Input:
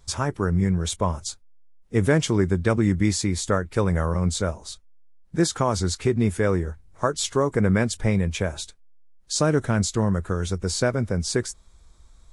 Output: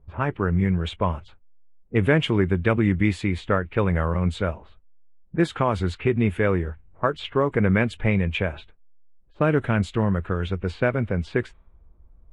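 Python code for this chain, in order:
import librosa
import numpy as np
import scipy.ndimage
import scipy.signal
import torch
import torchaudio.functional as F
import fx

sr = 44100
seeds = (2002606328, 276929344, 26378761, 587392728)

y = fx.high_shelf_res(x, sr, hz=4000.0, db=-13.0, q=3.0)
y = fx.env_lowpass(y, sr, base_hz=510.0, full_db=-18.5)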